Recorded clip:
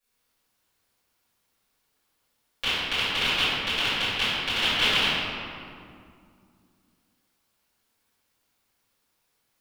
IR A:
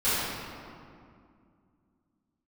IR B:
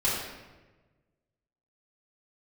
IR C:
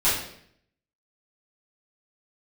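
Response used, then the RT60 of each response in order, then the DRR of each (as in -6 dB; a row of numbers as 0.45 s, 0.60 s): A; 2.3 s, 1.2 s, 0.65 s; -17.0 dB, -9.0 dB, -12.0 dB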